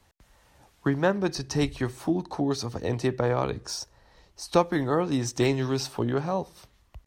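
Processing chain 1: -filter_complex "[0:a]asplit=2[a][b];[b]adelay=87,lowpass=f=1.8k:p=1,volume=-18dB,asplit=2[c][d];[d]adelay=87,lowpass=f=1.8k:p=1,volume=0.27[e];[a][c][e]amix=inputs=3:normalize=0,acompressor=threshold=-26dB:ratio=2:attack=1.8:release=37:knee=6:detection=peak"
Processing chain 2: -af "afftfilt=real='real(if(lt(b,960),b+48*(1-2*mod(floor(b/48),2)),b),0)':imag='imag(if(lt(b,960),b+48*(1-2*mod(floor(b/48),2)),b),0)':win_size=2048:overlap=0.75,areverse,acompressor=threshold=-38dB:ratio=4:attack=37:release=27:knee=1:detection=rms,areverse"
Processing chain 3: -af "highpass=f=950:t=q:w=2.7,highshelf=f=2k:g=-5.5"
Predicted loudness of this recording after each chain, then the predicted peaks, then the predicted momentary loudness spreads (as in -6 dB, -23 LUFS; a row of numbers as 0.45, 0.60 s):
-30.5, -35.0, -31.5 LUFS; -14.5, -20.5, -6.0 dBFS; 6, 9, 12 LU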